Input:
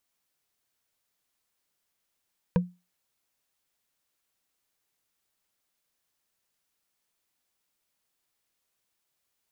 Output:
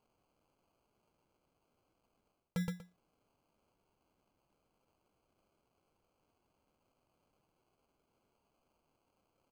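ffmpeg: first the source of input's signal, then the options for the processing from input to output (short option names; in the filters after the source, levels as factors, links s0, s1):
-f lavfi -i "aevalsrc='0.158*pow(10,-3*t/0.26)*sin(2*PI*178*t)+0.0891*pow(10,-3*t/0.077)*sin(2*PI*490.7*t)+0.0501*pow(10,-3*t/0.034)*sin(2*PI*961.9*t)+0.0282*pow(10,-3*t/0.019)*sin(2*PI*1590.1*t)+0.0158*pow(10,-3*t/0.012)*sin(2*PI*2374.5*t)':d=0.45:s=44100"
-af "aecho=1:1:120|240:0.251|0.0402,acrusher=samples=24:mix=1:aa=0.000001,areverse,acompressor=threshold=0.02:ratio=10,areverse"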